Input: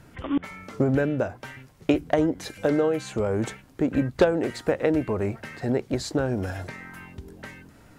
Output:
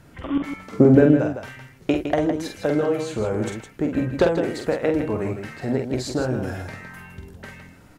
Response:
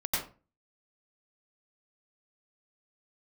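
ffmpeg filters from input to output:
-filter_complex "[0:a]asettb=1/sr,asplit=3[link_01][link_02][link_03];[link_01]atrim=end=0.724[link_04];[link_02]atrim=start=0.72:end=1.17,asetpts=PTS-STARTPTS,afade=type=in:duration=0.004:curve=qsin,afade=type=out:start_time=0.446:duration=0.004:curve=qsin,equalizer=frequency=270:width_type=o:width=2.5:gain=9.5[link_05];[link_03]atrim=start=1.166[link_06];[link_04][link_05]acrossfade=duration=0.004:curve1=hsin:curve2=qsin[link_07];[link_07][link_06]acrossfade=duration=0.004:curve1=qsin:curve2=hsin,aecho=1:1:46.65|160.3:0.562|0.398"

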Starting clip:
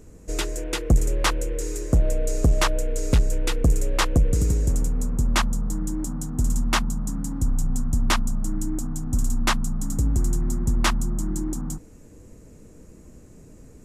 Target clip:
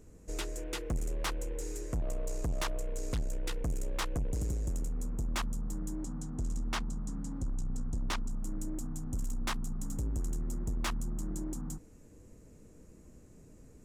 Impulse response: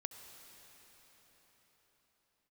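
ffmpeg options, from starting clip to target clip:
-filter_complex "[0:a]asettb=1/sr,asplit=3[link_01][link_02][link_03];[link_01]atrim=end=6.004[link_04];[link_02]atrim=start=6:end=8.3,asetpts=PTS-STARTPTS,afade=type=in:duration=0.004:curve=qsin,afade=type=out:start_time=2.296:duration=0.004:curve=qsin,lowpass=7400[link_05];[link_03]atrim=start=8.296[link_06];[link_04][link_05]acrossfade=duration=0.004:curve1=hsin:curve2=qsin[link_07];[link_07][link_06]acrossfade=duration=0.004:curve1=qsin:curve2=hsin,asoftclip=type=tanh:threshold=-20.5dB,volume=-8.5dB"

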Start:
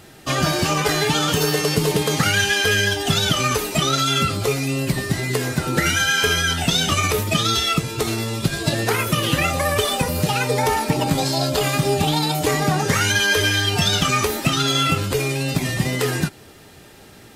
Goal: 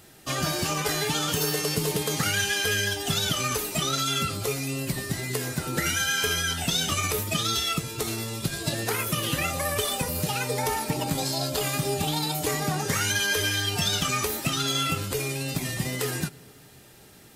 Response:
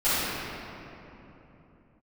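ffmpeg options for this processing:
-filter_complex "[0:a]highshelf=frequency=6500:gain=9,asplit=2[link_01][link_02];[1:a]atrim=start_sample=2205[link_03];[link_02][link_03]afir=irnorm=-1:irlink=0,volume=-40dB[link_04];[link_01][link_04]amix=inputs=2:normalize=0,volume=-8.5dB"

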